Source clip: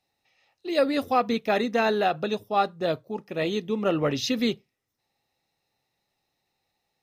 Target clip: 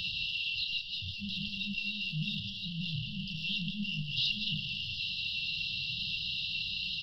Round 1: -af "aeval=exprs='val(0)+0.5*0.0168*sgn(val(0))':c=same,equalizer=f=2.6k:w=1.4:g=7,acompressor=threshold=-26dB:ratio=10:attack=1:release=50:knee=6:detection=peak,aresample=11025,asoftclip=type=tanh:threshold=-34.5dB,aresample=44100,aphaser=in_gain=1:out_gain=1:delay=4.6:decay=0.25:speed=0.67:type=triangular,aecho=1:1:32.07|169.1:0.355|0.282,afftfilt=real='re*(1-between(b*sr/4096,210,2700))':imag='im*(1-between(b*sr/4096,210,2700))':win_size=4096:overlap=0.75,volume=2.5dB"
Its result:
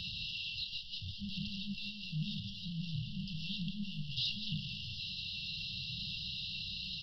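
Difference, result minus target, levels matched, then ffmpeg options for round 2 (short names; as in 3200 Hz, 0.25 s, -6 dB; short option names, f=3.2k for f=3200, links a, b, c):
soft clip: distortion +8 dB; 2000 Hz band -4.5 dB
-af "aeval=exprs='val(0)+0.5*0.0168*sgn(val(0))':c=same,equalizer=f=2.6k:w=1.4:g=18,acompressor=threshold=-26dB:ratio=10:attack=1:release=50:knee=6:detection=peak,aresample=11025,asoftclip=type=tanh:threshold=-26.5dB,aresample=44100,aphaser=in_gain=1:out_gain=1:delay=4.6:decay=0.25:speed=0.67:type=triangular,aecho=1:1:32.07|169.1:0.355|0.282,afftfilt=real='re*(1-between(b*sr/4096,210,2700))':imag='im*(1-between(b*sr/4096,210,2700))':win_size=4096:overlap=0.75,volume=2.5dB"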